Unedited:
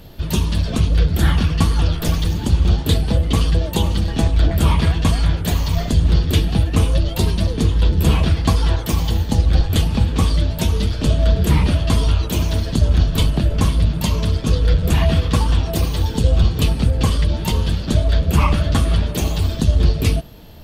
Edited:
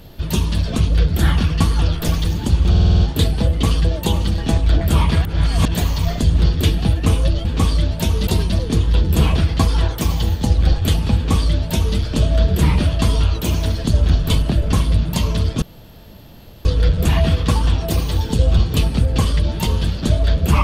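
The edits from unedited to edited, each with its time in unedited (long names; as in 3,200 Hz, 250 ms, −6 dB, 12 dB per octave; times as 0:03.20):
0:02.70: stutter 0.05 s, 7 plays
0:04.95–0:05.45: reverse
0:10.04–0:10.86: duplicate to 0:07.15
0:14.50: splice in room tone 1.03 s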